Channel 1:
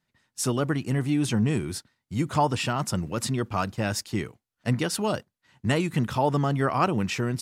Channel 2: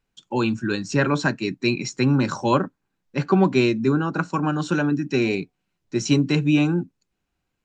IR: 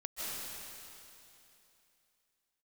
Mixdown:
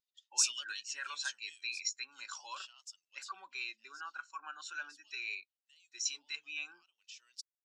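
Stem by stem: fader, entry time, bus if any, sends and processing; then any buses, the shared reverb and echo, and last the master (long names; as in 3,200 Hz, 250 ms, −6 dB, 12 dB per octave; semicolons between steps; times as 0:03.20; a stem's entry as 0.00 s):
0:03.21 −7.5 dB → 0:03.54 −15.5 dB, 0.00 s, no send, flat-topped bell 4,500 Hz +14 dB; brickwall limiter −13.5 dBFS, peak gain reduction 9 dB; automatic ducking −16 dB, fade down 1.70 s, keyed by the second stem
−10.0 dB, 0.00 s, no send, high-pass filter 83 Hz 24 dB per octave; brickwall limiter −15 dBFS, peak gain reduction 8 dB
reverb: not used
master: high-pass filter 1,300 Hz 12 dB per octave; spectral tilt +2.5 dB per octave; every bin expanded away from the loudest bin 1.5 to 1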